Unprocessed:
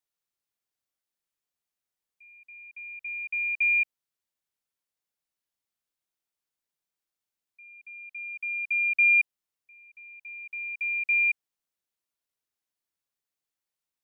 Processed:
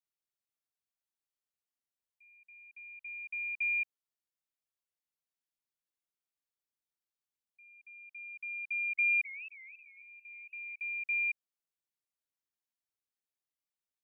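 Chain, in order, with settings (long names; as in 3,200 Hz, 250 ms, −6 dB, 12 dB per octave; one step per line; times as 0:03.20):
0:08.60–0:10.80: feedback echo with a swinging delay time 268 ms, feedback 44%, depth 176 cents, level −16.5 dB
level −8.5 dB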